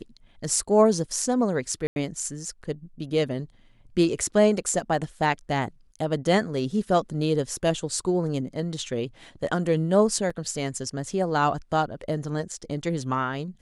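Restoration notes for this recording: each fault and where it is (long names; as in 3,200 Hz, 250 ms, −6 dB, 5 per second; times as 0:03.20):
0:01.87–0:01.96: drop-out 91 ms
0:10.30: drop-out 4.8 ms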